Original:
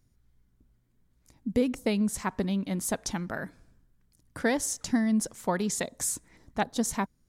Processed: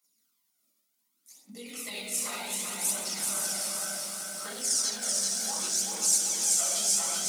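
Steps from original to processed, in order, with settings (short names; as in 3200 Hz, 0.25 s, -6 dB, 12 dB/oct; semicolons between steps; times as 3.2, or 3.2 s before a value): gliding pitch shift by -3 st starting unshifted; reverb RT60 1.1 s, pre-delay 6 ms, DRR -10.5 dB; in parallel at -2.5 dB: level quantiser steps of 23 dB; on the sum: steep high-pass 180 Hz 36 dB/oct; on a send: diffused feedback echo 0.541 s, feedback 41%, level -4.5 dB; on the sum: phaser 0.67 Hz, delay 1.8 ms, feedback 47%; limiter -7.5 dBFS, peak gain reduction 10 dB; differentiator; notch 1700 Hz, Q 5.2; lo-fi delay 0.383 s, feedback 55%, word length 8-bit, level -3 dB; gain -3.5 dB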